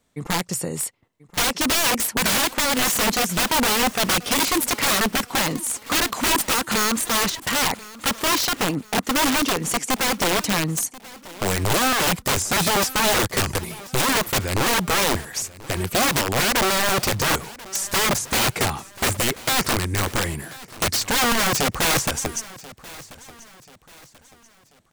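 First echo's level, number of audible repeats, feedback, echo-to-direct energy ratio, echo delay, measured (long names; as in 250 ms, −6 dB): −19.5 dB, 2, 39%, −19.0 dB, 1,036 ms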